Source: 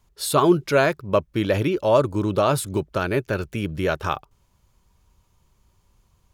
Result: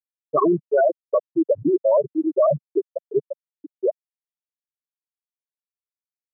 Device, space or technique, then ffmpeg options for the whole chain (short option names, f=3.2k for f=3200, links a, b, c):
PA system with an anti-feedback notch: -af "afftfilt=real='re*gte(hypot(re,im),0.631)':imag='im*gte(hypot(re,im),0.631)':win_size=1024:overlap=0.75,highpass=f=160:w=0.5412,highpass=f=160:w=1.3066,asuperstop=centerf=2100:order=4:qfactor=6.5,alimiter=limit=-18dB:level=0:latency=1:release=27,highpass=f=250:p=1,volume=8dB"